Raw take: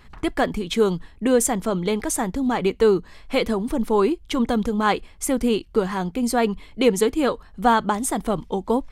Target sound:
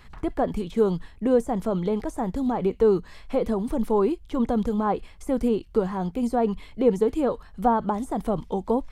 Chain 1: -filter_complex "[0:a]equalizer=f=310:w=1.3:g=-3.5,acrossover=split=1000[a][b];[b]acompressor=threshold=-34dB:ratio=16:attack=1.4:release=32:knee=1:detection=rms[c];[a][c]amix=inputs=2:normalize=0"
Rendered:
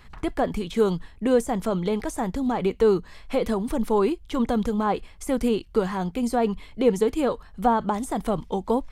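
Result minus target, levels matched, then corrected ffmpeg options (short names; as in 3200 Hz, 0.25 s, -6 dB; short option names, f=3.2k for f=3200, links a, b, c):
compressor: peak gain reduction -9.5 dB
-filter_complex "[0:a]equalizer=f=310:w=1.3:g=-3.5,acrossover=split=1000[a][b];[b]acompressor=threshold=-44dB:ratio=16:attack=1.4:release=32:knee=1:detection=rms[c];[a][c]amix=inputs=2:normalize=0"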